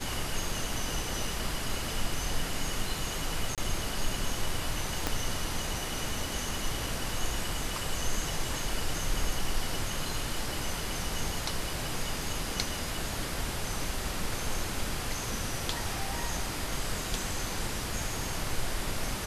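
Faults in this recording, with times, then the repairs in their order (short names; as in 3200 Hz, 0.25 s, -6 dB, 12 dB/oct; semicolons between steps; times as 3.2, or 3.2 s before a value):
3.55–3.58 gap 27 ms
5.07 pop -12 dBFS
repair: de-click; interpolate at 3.55, 27 ms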